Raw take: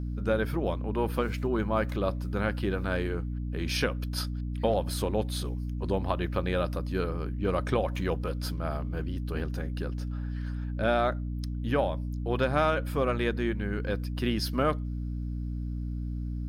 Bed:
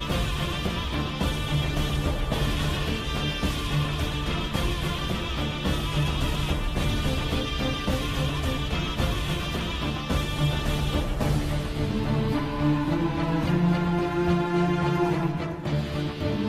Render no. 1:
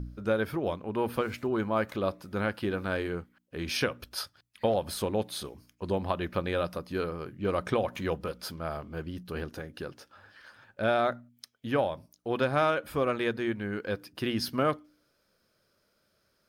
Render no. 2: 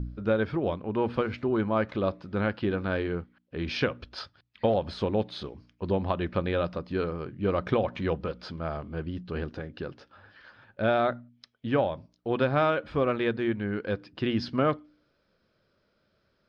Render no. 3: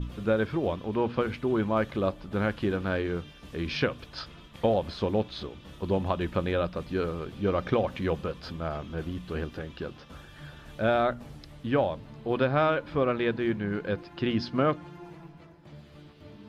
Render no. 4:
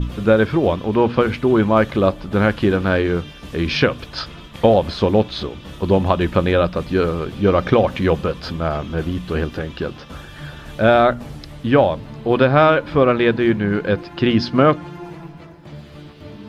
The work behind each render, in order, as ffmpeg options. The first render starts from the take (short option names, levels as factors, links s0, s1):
-af "bandreject=f=60:t=h:w=4,bandreject=f=120:t=h:w=4,bandreject=f=180:t=h:w=4,bandreject=f=240:t=h:w=4,bandreject=f=300:t=h:w=4"
-af "lowpass=f=4500:w=0.5412,lowpass=f=4500:w=1.3066,lowshelf=f=450:g=4.5"
-filter_complex "[1:a]volume=0.0841[s0];[0:a][s0]amix=inputs=2:normalize=0"
-af "volume=3.76,alimiter=limit=0.891:level=0:latency=1"